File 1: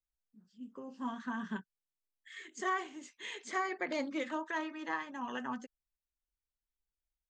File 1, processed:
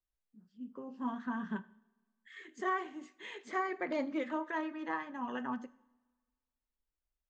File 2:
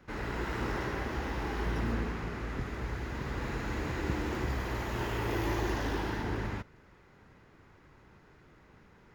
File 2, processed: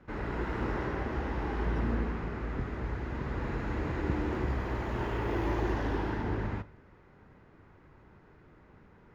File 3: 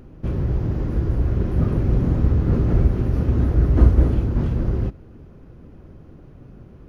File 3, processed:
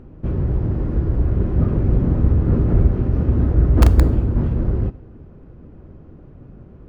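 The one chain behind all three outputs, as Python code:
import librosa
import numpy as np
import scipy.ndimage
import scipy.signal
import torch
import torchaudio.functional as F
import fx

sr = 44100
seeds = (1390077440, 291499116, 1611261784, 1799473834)

p1 = fx.lowpass(x, sr, hz=1500.0, slope=6)
p2 = (np.mod(10.0 ** (4.0 / 20.0) * p1 + 1.0, 2.0) - 1.0) / 10.0 ** (4.0 / 20.0)
p3 = p1 + F.gain(torch.from_numpy(p2), -8.5).numpy()
p4 = fx.rev_double_slope(p3, sr, seeds[0], early_s=0.6, late_s=1.6, knee_db=-16, drr_db=15.0)
y = F.gain(torch.from_numpy(p4), -1.0).numpy()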